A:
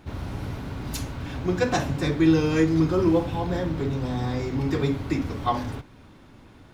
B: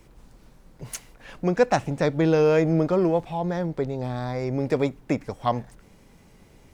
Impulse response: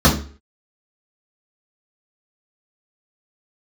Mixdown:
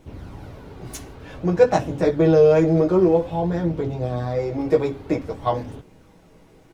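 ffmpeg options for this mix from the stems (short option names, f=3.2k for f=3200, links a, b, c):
-filter_complex "[0:a]flanger=delay=0.3:depth=2.4:regen=44:speed=0.52:shape=sinusoidal,volume=-4.5dB[a];[1:a]aecho=1:1:6.3:0.65,flanger=delay=16:depth=2:speed=1,adelay=0.9,volume=-1.5dB[b];[a][b]amix=inputs=2:normalize=0,equalizer=f=470:w=0.74:g=7"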